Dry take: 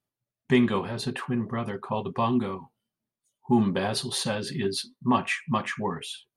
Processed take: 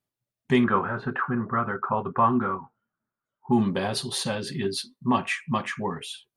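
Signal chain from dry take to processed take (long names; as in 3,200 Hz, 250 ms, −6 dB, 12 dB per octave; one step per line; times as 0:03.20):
0:00.64–0:03.52: low-pass with resonance 1,400 Hz, resonance Q 6.9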